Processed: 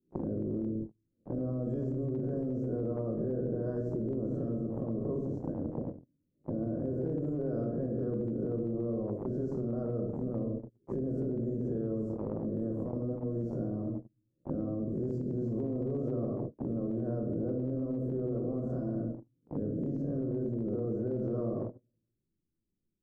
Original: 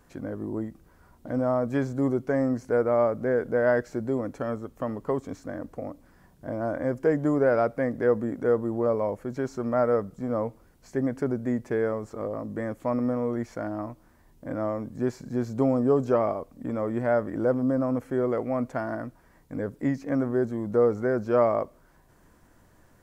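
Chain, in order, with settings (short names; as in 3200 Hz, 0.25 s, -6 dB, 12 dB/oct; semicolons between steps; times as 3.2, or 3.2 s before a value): spectral swells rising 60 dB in 0.48 s; in parallel at -0.5 dB: compressor 6:1, threshold -32 dBFS, peak gain reduction 15 dB; on the sum: dynamic EQ 140 Hz, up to +4 dB, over -42 dBFS, Q 1.9; inverse Chebyshev low-pass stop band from 790 Hz, stop band 40 dB; shoebox room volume 250 m³, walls mixed, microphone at 1 m; limiter -17 dBFS, peak gain reduction 9.5 dB; gate -28 dBFS, range -47 dB; low shelf 76 Hz -8.5 dB; spectral compressor 2:1; gain -3.5 dB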